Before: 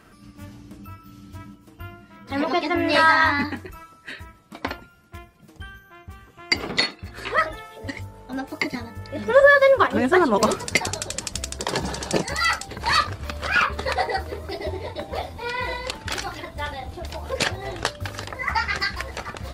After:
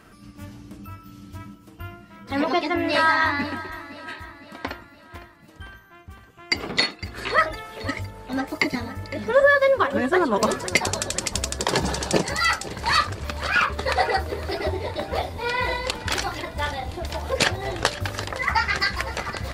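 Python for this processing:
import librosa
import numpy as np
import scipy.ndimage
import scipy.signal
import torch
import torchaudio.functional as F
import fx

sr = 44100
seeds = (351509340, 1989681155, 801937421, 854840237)

y = fx.rider(x, sr, range_db=3, speed_s=0.5)
y = fx.echo_feedback(y, sr, ms=509, feedback_pct=54, wet_db=-16)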